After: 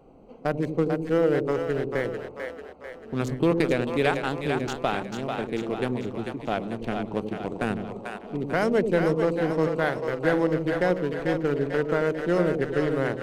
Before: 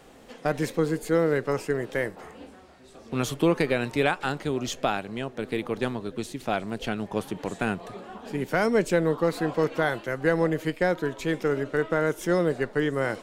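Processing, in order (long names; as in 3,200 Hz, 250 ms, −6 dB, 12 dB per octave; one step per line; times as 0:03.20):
adaptive Wiener filter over 25 samples
on a send: echo with a time of its own for lows and highs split 480 Hz, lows 87 ms, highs 443 ms, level −5 dB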